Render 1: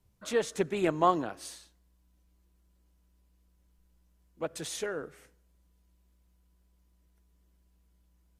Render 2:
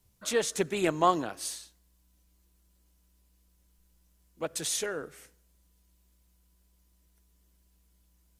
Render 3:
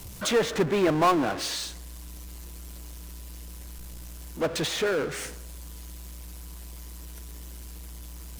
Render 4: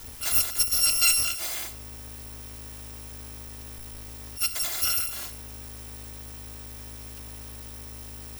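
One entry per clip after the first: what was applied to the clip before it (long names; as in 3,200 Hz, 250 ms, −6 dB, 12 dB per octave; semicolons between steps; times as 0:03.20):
high-shelf EQ 3,200 Hz +10 dB
treble cut that deepens with the level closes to 2,100 Hz, closed at −29.5 dBFS; power curve on the samples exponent 0.5; level −1.5 dB
samples in bit-reversed order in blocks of 256 samples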